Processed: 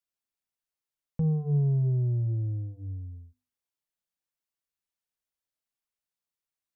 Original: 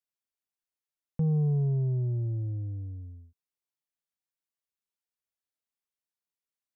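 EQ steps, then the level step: low shelf 120 Hz +5.5 dB; notches 50/100/150/200/250/300/350/400/450 Hz; 0.0 dB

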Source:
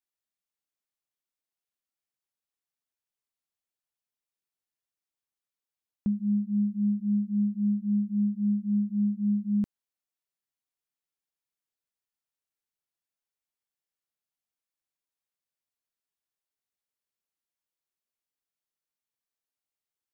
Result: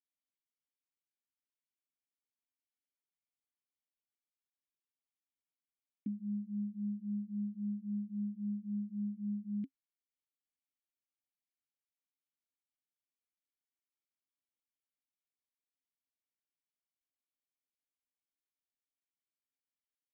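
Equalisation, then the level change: vowel filter i; +1.0 dB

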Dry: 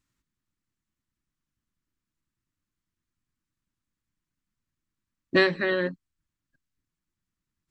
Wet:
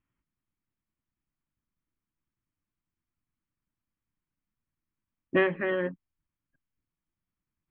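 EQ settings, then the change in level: rippled Chebyshev low-pass 3300 Hz, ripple 3 dB; air absorption 280 m; 0.0 dB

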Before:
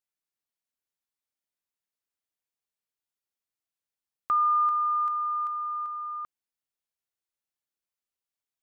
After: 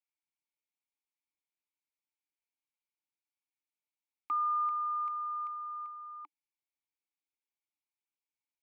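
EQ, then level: dynamic EQ 1200 Hz, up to +5 dB, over -35 dBFS; vowel filter u; tilt +4 dB/oct; +7.0 dB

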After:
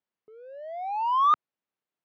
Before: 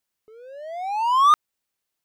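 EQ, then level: HPF 140 Hz 12 dB/oct; tape spacing loss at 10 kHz 43 dB; high shelf 3500 Hz +8 dB; -1.0 dB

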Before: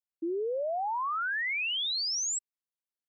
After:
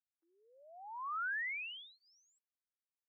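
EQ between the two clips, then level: running mean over 10 samples; HPF 1300 Hz 24 dB/oct; air absorption 450 m; 0.0 dB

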